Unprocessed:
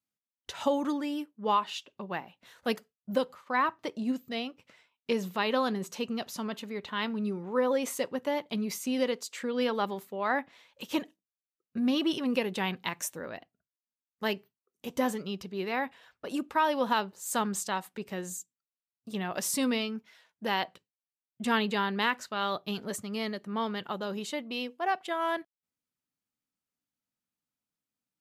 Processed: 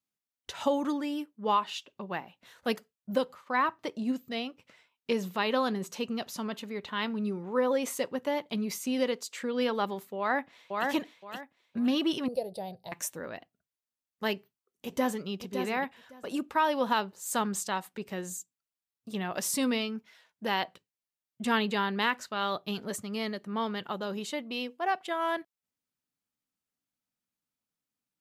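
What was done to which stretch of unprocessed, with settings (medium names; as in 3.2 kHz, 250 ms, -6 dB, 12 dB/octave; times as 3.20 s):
10.18–10.88 s: echo throw 520 ms, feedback 25%, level -2 dB
12.28–12.92 s: FFT filter 120 Hz 0 dB, 280 Hz -18 dB, 660 Hz +7 dB, 1.1 kHz -25 dB, 2.9 kHz -24 dB, 4.7 kHz -1 dB, 6.8 kHz -26 dB, 9.6 kHz +3 dB, 14 kHz -8 dB
14.35–15.28 s: echo throw 560 ms, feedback 15%, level -7.5 dB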